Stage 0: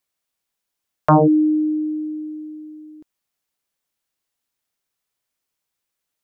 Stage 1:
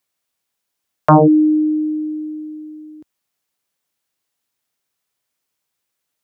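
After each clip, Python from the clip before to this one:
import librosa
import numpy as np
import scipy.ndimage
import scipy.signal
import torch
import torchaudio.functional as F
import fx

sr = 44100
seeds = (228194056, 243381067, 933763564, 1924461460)

y = scipy.signal.sosfilt(scipy.signal.butter(2, 66.0, 'highpass', fs=sr, output='sos'), x)
y = y * 10.0 ** (3.5 / 20.0)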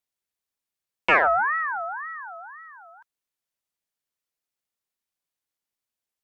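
y = fx.cheby_harmonics(x, sr, harmonics=(3, 7), levels_db=(-28, -34), full_scale_db=-1.5)
y = fx.ring_lfo(y, sr, carrier_hz=1300.0, swing_pct=25, hz=1.9)
y = y * 10.0 ** (-6.0 / 20.0)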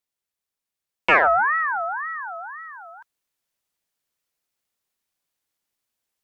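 y = fx.rider(x, sr, range_db=3, speed_s=2.0)
y = y * 10.0 ** (3.5 / 20.0)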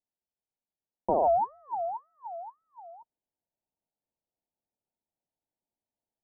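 y = scipy.signal.sosfilt(scipy.signal.cheby1(6, 3, 940.0, 'lowpass', fs=sr, output='sos'), x)
y = y * 10.0 ** (-1.5 / 20.0)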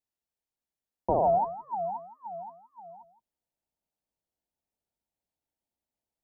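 y = fx.octave_divider(x, sr, octaves=2, level_db=-3.0)
y = y + 10.0 ** (-14.0 / 20.0) * np.pad(y, (int(167 * sr / 1000.0), 0))[:len(y)]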